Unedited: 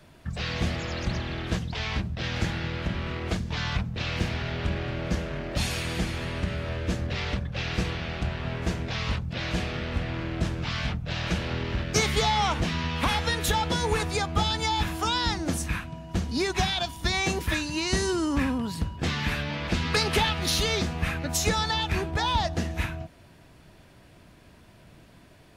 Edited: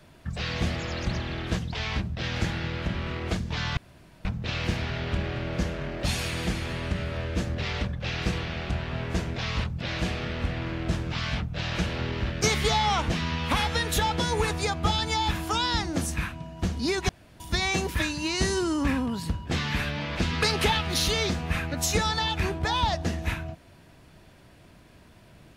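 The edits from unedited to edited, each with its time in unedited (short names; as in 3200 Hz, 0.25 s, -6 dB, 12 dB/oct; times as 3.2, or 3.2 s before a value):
3.77 insert room tone 0.48 s
16.61–16.92 room tone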